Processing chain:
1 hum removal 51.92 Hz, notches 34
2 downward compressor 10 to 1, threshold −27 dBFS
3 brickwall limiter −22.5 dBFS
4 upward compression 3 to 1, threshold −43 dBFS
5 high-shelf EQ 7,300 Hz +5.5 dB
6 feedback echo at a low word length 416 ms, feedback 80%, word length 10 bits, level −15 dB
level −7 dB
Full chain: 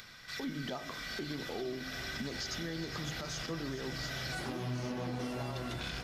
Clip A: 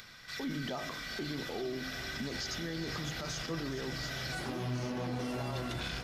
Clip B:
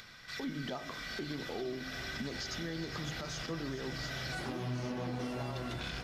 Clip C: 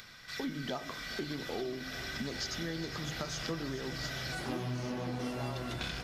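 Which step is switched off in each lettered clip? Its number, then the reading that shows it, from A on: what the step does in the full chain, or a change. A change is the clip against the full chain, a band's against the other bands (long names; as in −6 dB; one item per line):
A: 2, average gain reduction 5.0 dB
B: 5, 8 kHz band −2.5 dB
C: 3, change in crest factor +6.0 dB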